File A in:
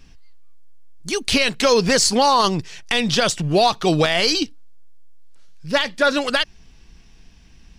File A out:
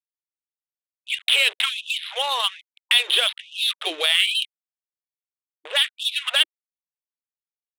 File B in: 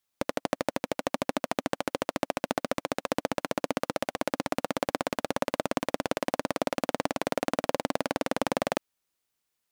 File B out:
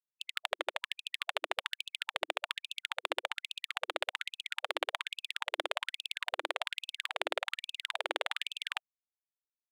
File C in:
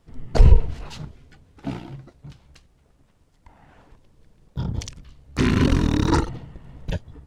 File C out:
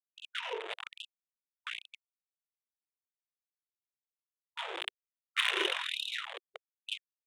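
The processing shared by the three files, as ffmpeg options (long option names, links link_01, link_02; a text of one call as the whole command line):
ffmpeg -i in.wav -filter_complex "[0:a]adynamicequalizer=threshold=0.0251:dfrequency=110:dqfactor=0.78:tfrequency=110:tqfactor=0.78:attack=5:release=100:ratio=0.375:range=2:mode=boostabove:tftype=bell,aresample=11025,aeval=exprs='val(0)*gte(abs(val(0)),0.0447)':channel_layout=same,aresample=44100,highshelf=frequency=2700:gain=-4.5,acrossover=split=220|3000[link_01][link_02][link_03];[link_02]acompressor=threshold=-41dB:ratio=2[link_04];[link_01][link_04][link_03]amix=inputs=3:normalize=0,aresample=8000,aresample=44100,crystalizer=i=8.5:c=0,adynamicsmooth=sensitivity=2.5:basefreq=2200,afftfilt=real='re*gte(b*sr/1024,320*pow(2600/320,0.5+0.5*sin(2*PI*1.2*pts/sr)))':imag='im*gte(b*sr/1024,320*pow(2600/320,0.5+0.5*sin(2*PI*1.2*pts/sr)))':win_size=1024:overlap=0.75" out.wav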